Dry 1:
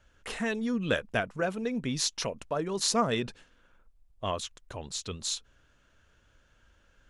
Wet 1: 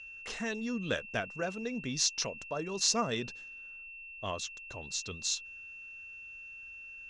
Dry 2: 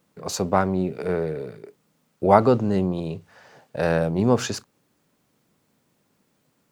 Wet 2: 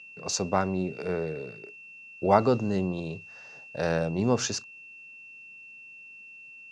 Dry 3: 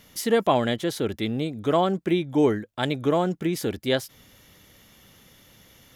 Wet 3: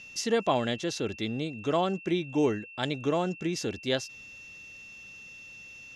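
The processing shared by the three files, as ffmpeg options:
-af "aeval=exprs='val(0)+0.00891*sin(2*PI*2700*n/s)':c=same,lowpass=f=6100:t=q:w=2.7,volume=0.531"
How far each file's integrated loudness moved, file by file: -4.0 LU, -5.0 LU, -5.0 LU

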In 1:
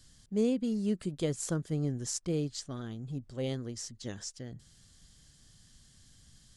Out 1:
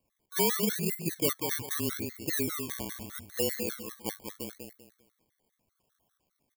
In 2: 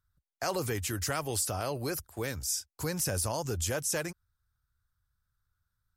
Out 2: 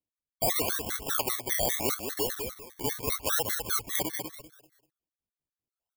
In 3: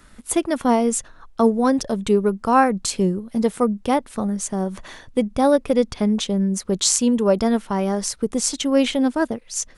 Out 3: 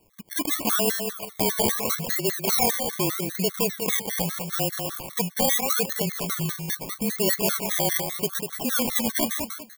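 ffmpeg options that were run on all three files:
-filter_complex "[0:a]aresample=16000,asoftclip=type=tanh:threshold=0.126,aresample=44100,acrusher=bits=8:mode=log:mix=0:aa=0.000001,acrossover=split=4600[s0][s1];[s1]acompressor=threshold=0.00708:ratio=4:attack=1:release=60[s2];[s0][s2]amix=inputs=2:normalize=0,asplit=2[s3][s4];[s4]highpass=f=720:p=1,volume=10,asoftclip=type=tanh:threshold=0.141[s5];[s3][s5]amix=inputs=2:normalize=0,lowpass=f=1200:p=1,volume=0.501,highpass=f=240:p=1,highshelf=f=5500:g=-6,afreqshift=-32,afwtdn=0.0112,aecho=1:1:195|390|585|780:0.501|0.145|0.0421|0.0122,acrusher=samples=26:mix=1:aa=0.000001:lfo=1:lforange=15.6:lforate=0.79,aemphasis=mode=production:type=75kf,afftfilt=real='re*gt(sin(2*PI*5*pts/sr)*(1-2*mod(floor(b*sr/1024/1100),2)),0)':imag='im*gt(sin(2*PI*5*pts/sr)*(1-2*mod(floor(b*sr/1024/1100),2)),0)':win_size=1024:overlap=0.75"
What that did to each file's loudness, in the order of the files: +3.0 LU, +3.5 LU, -3.5 LU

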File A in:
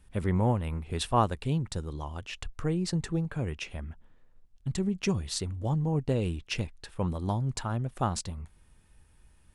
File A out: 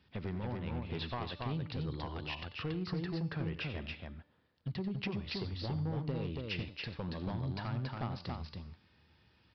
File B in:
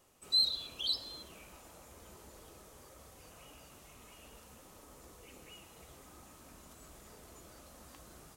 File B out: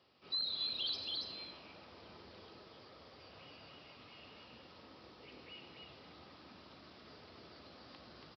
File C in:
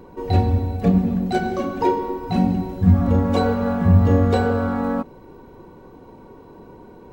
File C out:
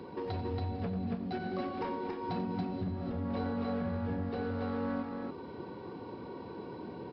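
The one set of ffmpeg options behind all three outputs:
-filter_complex "[0:a]aemphasis=mode=production:type=75kf,bandreject=f=293.6:t=h:w=4,bandreject=f=587.2:t=h:w=4,bandreject=f=880.8:t=h:w=4,bandreject=f=1174.4:t=h:w=4,bandreject=f=1468:t=h:w=4,bandreject=f=1761.6:t=h:w=4,bandreject=f=2055.2:t=h:w=4,bandreject=f=2348.8:t=h:w=4,bandreject=f=2642.4:t=h:w=4,bandreject=f=2936:t=h:w=4,bandreject=f=3229.6:t=h:w=4,bandreject=f=3523.2:t=h:w=4,bandreject=f=3816.8:t=h:w=4,bandreject=f=4110.4:t=h:w=4,bandreject=f=4404:t=h:w=4,bandreject=f=4697.6:t=h:w=4,bandreject=f=4991.2:t=h:w=4,bandreject=f=5284.8:t=h:w=4,bandreject=f=5578.4:t=h:w=4,bandreject=f=5872:t=h:w=4,bandreject=f=6165.6:t=h:w=4,bandreject=f=6459.2:t=h:w=4,bandreject=f=6752.8:t=h:w=4,bandreject=f=7046.4:t=h:w=4,bandreject=f=7340:t=h:w=4,bandreject=f=7633.6:t=h:w=4,bandreject=f=7927.2:t=h:w=4,bandreject=f=8220.8:t=h:w=4,bandreject=f=8514.4:t=h:w=4,bandreject=f=8808:t=h:w=4,bandreject=f=9101.6:t=h:w=4,bandreject=f=9395.2:t=h:w=4,bandreject=f=9688.8:t=h:w=4,bandreject=f=9982.4:t=h:w=4,acrossover=split=2800[s0][s1];[s1]acompressor=threshold=0.0126:ratio=4:attack=1:release=60[s2];[s0][s2]amix=inputs=2:normalize=0,highpass=f=82:w=0.5412,highpass=f=82:w=1.3066,equalizer=f=300:w=1.5:g=2,acompressor=threshold=0.0316:ratio=12,aresample=11025,asoftclip=type=hard:threshold=0.0355,aresample=44100,aecho=1:1:90.38|279.9:0.251|0.708,volume=0.708"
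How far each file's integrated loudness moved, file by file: -8.0 LU, -7.5 LU, -17.5 LU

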